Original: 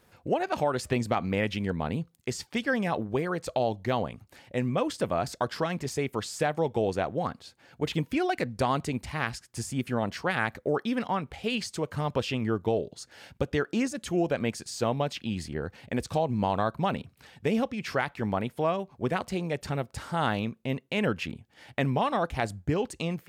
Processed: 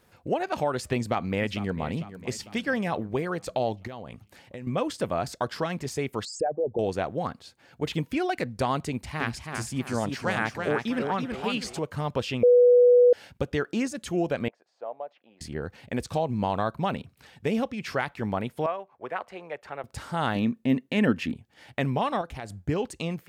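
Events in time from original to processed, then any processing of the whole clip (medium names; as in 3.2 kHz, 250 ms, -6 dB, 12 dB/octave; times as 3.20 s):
0.96–1.84 s: echo throw 450 ms, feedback 55%, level -14 dB
3.87–4.67 s: compression 16:1, threshold -34 dBFS
6.25–6.79 s: resonances exaggerated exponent 3
8.87–11.79 s: modulated delay 329 ms, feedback 37%, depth 124 cents, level -5 dB
12.43–13.13 s: bleep 490 Hz -13 dBFS
14.48–15.41 s: ladder band-pass 730 Hz, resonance 50%
18.66–19.84 s: three-band isolator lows -21 dB, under 470 Hz, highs -18 dB, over 2.5 kHz
20.35–21.33 s: small resonant body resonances 250/1800 Hz, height 12 dB
22.21–22.65 s: compression 3:1, threshold -35 dBFS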